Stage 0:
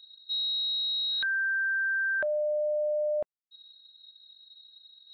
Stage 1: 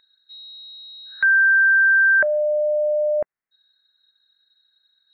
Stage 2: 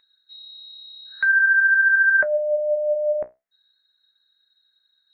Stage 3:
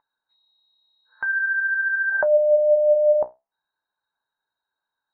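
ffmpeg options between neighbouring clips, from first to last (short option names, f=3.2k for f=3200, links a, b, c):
-af "highshelf=f=2.6k:t=q:w=3:g=-11,volume=7.5dB"
-af "flanger=delay=6.8:depth=9.7:regen=60:speed=0.46:shape=triangular,volume=2.5dB"
-af "lowpass=f=910:t=q:w=6.6"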